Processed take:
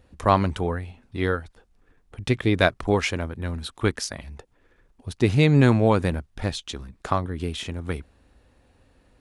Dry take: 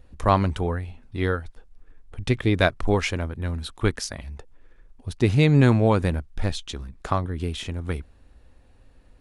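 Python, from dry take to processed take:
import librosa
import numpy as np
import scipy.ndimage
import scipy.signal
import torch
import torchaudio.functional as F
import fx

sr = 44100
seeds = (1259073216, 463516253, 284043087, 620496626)

y = fx.highpass(x, sr, hz=94.0, slope=6)
y = y * librosa.db_to_amplitude(1.0)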